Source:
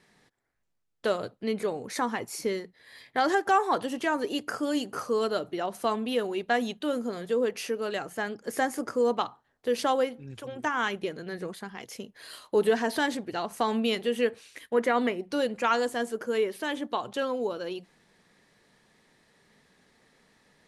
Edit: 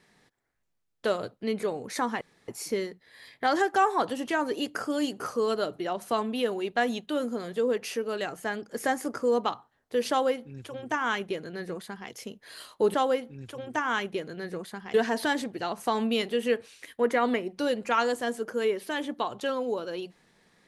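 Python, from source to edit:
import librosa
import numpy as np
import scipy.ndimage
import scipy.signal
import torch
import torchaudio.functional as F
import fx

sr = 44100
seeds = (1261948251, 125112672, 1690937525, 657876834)

y = fx.edit(x, sr, fx.insert_room_tone(at_s=2.21, length_s=0.27),
    fx.duplicate(start_s=9.83, length_s=2.0, to_s=12.67), tone=tone)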